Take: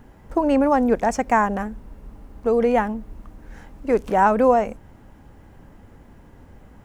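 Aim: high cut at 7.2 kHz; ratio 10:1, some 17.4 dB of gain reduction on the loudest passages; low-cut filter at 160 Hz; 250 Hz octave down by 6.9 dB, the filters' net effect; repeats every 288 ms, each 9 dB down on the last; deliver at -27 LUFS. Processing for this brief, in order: high-pass 160 Hz; low-pass 7.2 kHz; peaking EQ 250 Hz -7 dB; compression 10:1, threshold -31 dBFS; feedback delay 288 ms, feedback 35%, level -9 dB; trim +9.5 dB

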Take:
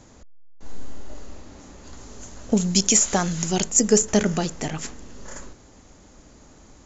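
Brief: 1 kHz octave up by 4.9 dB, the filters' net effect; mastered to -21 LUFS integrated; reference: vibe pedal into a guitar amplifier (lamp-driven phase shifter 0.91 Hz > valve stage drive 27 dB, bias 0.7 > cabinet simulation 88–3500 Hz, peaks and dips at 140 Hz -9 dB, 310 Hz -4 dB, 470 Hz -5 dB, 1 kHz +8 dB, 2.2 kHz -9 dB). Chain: peaking EQ 1 kHz +3.5 dB; lamp-driven phase shifter 0.91 Hz; valve stage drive 27 dB, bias 0.7; cabinet simulation 88–3500 Hz, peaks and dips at 140 Hz -9 dB, 310 Hz -4 dB, 470 Hz -5 dB, 1 kHz +8 dB, 2.2 kHz -9 dB; trim +17.5 dB

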